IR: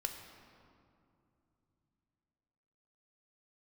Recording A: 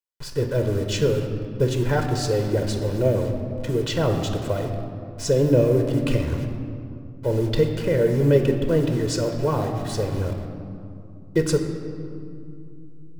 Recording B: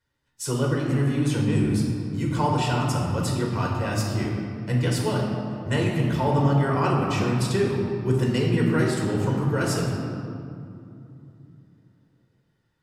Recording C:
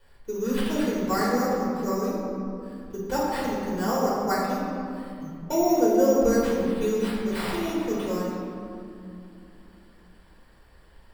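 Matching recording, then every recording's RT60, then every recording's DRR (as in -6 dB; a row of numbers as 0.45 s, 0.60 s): A; 2.7 s, 2.7 s, 2.7 s; 4.0 dB, -2.0 dB, -7.0 dB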